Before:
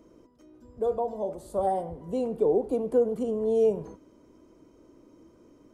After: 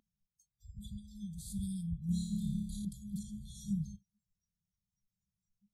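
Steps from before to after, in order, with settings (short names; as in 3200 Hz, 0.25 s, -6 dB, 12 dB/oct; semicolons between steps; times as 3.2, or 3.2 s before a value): FFT band-reject 210–3200 Hz; 2.06–2.85 flutter echo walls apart 4.9 m, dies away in 0.8 s; spectral noise reduction 29 dB; gain +4.5 dB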